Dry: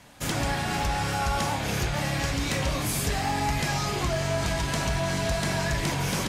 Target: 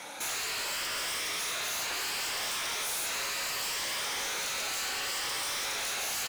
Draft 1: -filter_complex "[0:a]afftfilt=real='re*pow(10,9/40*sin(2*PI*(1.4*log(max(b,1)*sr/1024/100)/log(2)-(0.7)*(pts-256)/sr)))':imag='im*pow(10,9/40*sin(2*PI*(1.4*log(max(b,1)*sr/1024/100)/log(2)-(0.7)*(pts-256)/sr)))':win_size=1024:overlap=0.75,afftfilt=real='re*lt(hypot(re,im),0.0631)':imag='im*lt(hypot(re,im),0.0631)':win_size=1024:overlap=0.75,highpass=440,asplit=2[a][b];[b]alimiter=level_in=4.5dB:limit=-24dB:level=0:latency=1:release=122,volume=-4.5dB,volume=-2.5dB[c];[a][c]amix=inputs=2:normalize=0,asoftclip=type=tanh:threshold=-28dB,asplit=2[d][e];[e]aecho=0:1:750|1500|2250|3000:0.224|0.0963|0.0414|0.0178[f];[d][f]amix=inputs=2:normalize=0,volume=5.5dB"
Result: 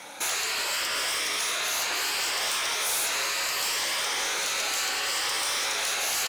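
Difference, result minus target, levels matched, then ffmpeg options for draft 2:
soft clip: distortion -7 dB
-filter_complex "[0:a]afftfilt=real='re*pow(10,9/40*sin(2*PI*(1.4*log(max(b,1)*sr/1024/100)/log(2)-(0.7)*(pts-256)/sr)))':imag='im*pow(10,9/40*sin(2*PI*(1.4*log(max(b,1)*sr/1024/100)/log(2)-(0.7)*(pts-256)/sr)))':win_size=1024:overlap=0.75,afftfilt=real='re*lt(hypot(re,im),0.0631)':imag='im*lt(hypot(re,im),0.0631)':win_size=1024:overlap=0.75,highpass=440,asplit=2[a][b];[b]alimiter=level_in=4.5dB:limit=-24dB:level=0:latency=1:release=122,volume=-4.5dB,volume=-2.5dB[c];[a][c]amix=inputs=2:normalize=0,asoftclip=type=tanh:threshold=-37.5dB,asplit=2[d][e];[e]aecho=0:1:750|1500|2250|3000:0.224|0.0963|0.0414|0.0178[f];[d][f]amix=inputs=2:normalize=0,volume=5.5dB"

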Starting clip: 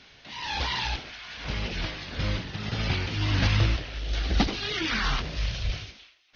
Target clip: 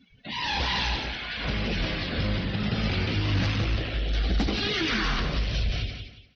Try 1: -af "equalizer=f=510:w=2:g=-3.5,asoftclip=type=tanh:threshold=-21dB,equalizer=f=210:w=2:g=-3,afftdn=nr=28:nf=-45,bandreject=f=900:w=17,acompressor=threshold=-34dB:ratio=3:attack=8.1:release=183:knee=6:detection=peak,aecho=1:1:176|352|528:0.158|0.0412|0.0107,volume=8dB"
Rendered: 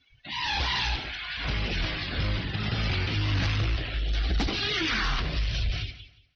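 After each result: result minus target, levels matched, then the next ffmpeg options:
echo-to-direct -8.5 dB; 250 Hz band -4.0 dB; 500 Hz band -3.5 dB
-af "equalizer=f=510:w=2:g=-3.5,asoftclip=type=tanh:threshold=-21dB,equalizer=f=210:w=2:g=-3,afftdn=nr=28:nf=-45,bandreject=f=900:w=17,acompressor=threshold=-34dB:ratio=3:attack=8.1:release=183:knee=6:detection=peak,aecho=1:1:176|352|528:0.422|0.11|0.0285,volume=8dB"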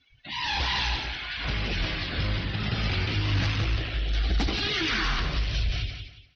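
250 Hz band -4.0 dB; 500 Hz band -3.5 dB
-af "equalizer=f=510:w=2:g=-3.5,asoftclip=type=tanh:threshold=-21dB,equalizer=f=210:w=2:g=5,afftdn=nr=28:nf=-45,bandreject=f=900:w=17,acompressor=threshold=-34dB:ratio=3:attack=8.1:release=183:knee=6:detection=peak,aecho=1:1:176|352|528:0.422|0.11|0.0285,volume=8dB"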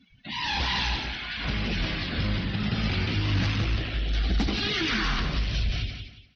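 500 Hz band -3.5 dB
-af "equalizer=f=510:w=2:g=2.5,asoftclip=type=tanh:threshold=-21dB,equalizer=f=210:w=2:g=5,afftdn=nr=28:nf=-45,bandreject=f=900:w=17,acompressor=threshold=-34dB:ratio=3:attack=8.1:release=183:knee=6:detection=peak,aecho=1:1:176|352|528:0.422|0.11|0.0285,volume=8dB"

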